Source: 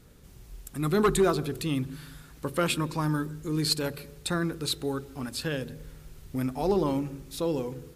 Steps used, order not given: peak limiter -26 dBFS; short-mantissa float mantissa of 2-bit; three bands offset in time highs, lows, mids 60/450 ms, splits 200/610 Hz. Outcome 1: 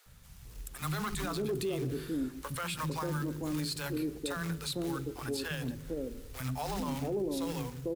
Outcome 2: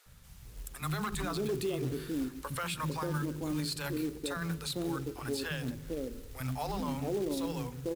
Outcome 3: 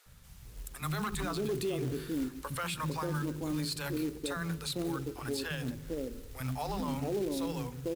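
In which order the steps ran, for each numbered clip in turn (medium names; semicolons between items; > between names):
short-mantissa float > three bands offset in time > peak limiter; three bands offset in time > short-mantissa float > peak limiter; three bands offset in time > peak limiter > short-mantissa float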